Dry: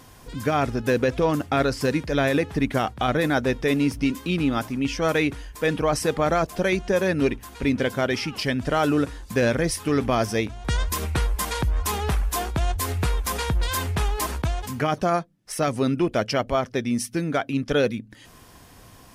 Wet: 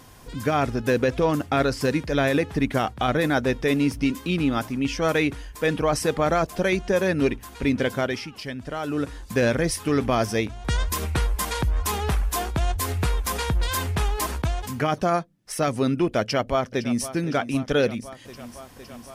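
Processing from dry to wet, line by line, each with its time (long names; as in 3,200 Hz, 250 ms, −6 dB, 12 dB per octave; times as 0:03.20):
0:07.96–0:09.19: duck −8.5 dB, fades 0.33 s
0:16.21–0:17.12: delay throw 510 ms, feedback 80%, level −14 dB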